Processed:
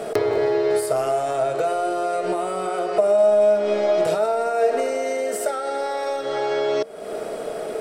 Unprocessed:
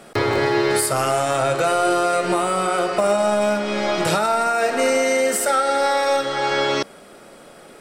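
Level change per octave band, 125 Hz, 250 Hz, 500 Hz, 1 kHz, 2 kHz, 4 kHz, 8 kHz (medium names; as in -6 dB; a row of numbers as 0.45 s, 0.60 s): -10.0 dB, -6.0 dB, +1.0 dB, -5.0 dB, -10.0 dB, -10.0 dB, -10.0 dB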